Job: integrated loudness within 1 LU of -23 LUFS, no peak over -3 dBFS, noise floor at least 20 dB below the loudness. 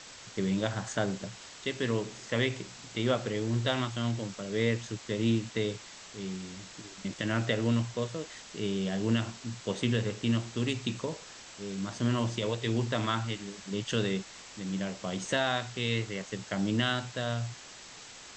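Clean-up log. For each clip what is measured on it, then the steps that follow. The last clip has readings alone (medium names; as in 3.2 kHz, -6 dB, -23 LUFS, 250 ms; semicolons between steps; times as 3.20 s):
noise floor -49 dBFS; noise floor target -52 dBFS; loudness -32.0 LUFS; peak level -14.0 dBFS; loudness target -23.0 LUFS
-> noise reduction 6 dB, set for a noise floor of -49 dBFS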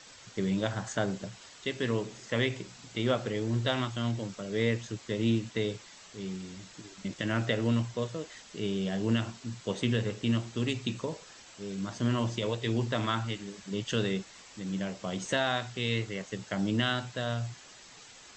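noise floor -52 dBFS; noise floor target -53 dBFS
-> noise reduction 6 dB, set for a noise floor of -52 dBFS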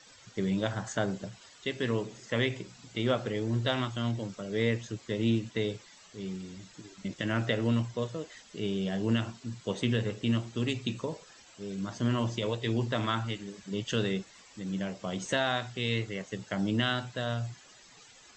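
noise floor -56 dBFS; loudness -32.5 LUFS; peak level -14.5 dBFS; loudness target -23.0 LUFS
-> trim +9.5 dB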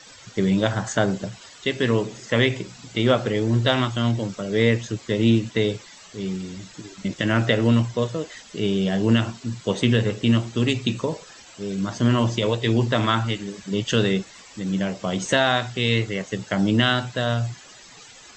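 loudness -23.0 LUFS; peak level -4.5 dBFS; noise floor -46 dBFS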